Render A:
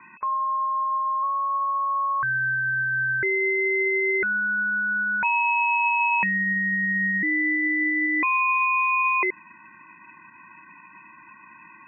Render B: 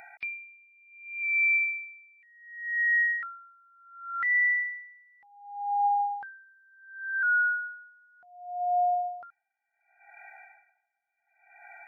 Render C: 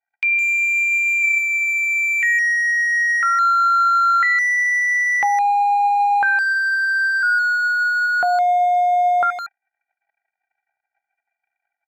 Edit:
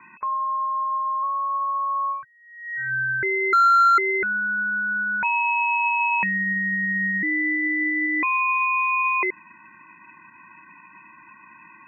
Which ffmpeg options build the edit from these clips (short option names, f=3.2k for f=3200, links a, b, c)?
-filter_complex "[0:a]asplit=3[a][b][c];[a]atrim=end=2.25[d];[1:a]atrim=start=2.09:end=2.92[e];[b]atrim=start=2.76:end=3.532[f];[2:a]atrim=start=3.528:end=3.982[g];[c]atrim=start=3.978[h];[d][e]acrossfade=d=0.16:c1=tri:c2=tri[i];[i][f]acrossfade=d=0.16:c1=tri:c2=tri[j];[j][g]acrossfade=d=0.004:c1=hsin:c2=hsin[k];[k][h]acrossfade=d=0.004:c1=hsin:c2=hsin"